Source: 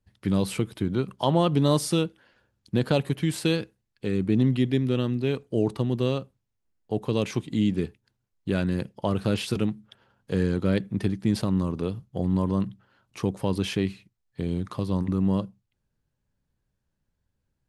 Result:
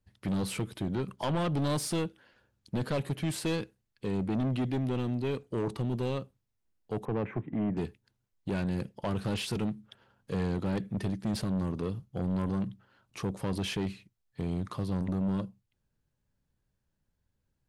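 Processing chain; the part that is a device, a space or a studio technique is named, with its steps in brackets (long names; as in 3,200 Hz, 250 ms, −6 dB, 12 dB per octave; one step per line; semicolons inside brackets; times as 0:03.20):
0:07.05–0:07.77: elliptic band-pass filter 100–1,900 Hz, stop band 40 dB
saturation between pre-emphasis and de-emphasis (high-shelf EQ 7,500 Hz +9.5 dB; soft clipping −24 dBFS, distortion −8 dB; high-shelf EQ 7,500 Hz −9.5 dB)
level −1.5 dB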